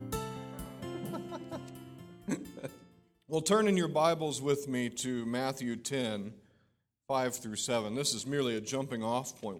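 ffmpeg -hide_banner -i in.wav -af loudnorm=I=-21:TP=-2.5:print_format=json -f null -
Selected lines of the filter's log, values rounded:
"input_i" : "-33.7",
"input_tp" : "-14.5",
"input_lra" : "3.8",
"input_thresh" : "-44.4",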